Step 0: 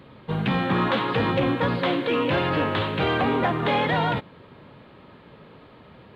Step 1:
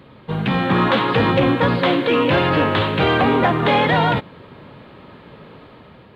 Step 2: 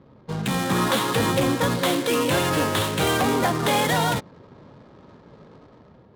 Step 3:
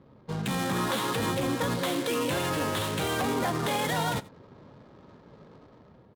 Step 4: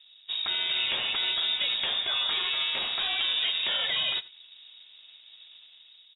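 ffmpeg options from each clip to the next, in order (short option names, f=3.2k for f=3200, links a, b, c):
-af "dynaudnorm=f=240:g=5:m=4dB,volume=2.5dB"
-af "adynamicsmooth=sensitivity=7:basefreq=730,aexciter=amount=1.7:drive=8.9:freq=3.7k,volume=-5.5dB"
-af "alimiter=limit=-16dB:level=0:latency=1,aecho=1:1:87:0.0891,volume=-4dB"
-af "lowpass=f=3.3k:t=q:w=0.5098,lowpass=f=3.3k:t=q:w=0.6013,lowpass=f=3.3k:t=q:w=0.9,lowpass=f=3.3k:t=q:w=2.563,afreqshift=-3900"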